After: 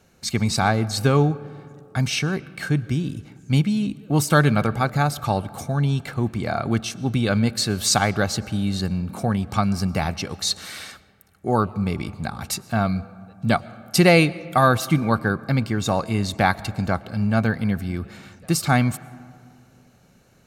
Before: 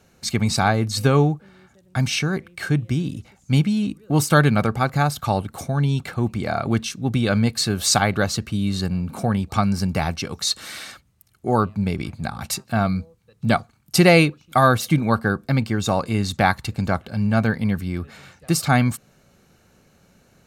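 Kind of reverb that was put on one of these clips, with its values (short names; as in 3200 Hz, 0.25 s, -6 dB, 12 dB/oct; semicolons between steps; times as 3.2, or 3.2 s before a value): digital reverb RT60 2.4 s, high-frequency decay 0.4×, pre-delay 75 ms, DRR 19 dB; gain -1 dB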